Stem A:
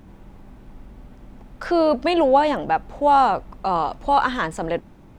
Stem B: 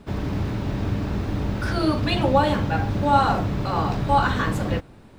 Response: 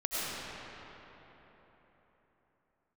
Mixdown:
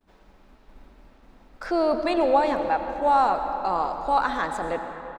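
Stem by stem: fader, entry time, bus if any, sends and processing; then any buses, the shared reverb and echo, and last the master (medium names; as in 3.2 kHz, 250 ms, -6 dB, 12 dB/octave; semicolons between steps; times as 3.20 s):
-5.5 dB, 0.00 s, send -13 dB, band-stop 3 kHz, Q 5.8; expander -36 dBFS
-20.0 dB, 9.9 ms, send -14.5 dB, high-pass 520 Hz 12 dB/octave; auto duck -10 dB, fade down 0.40 s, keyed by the first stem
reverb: on, RT60 4.0 s, pre-delay 60 ms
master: peaking EQ 120 Hz -9 dB 1.4 oct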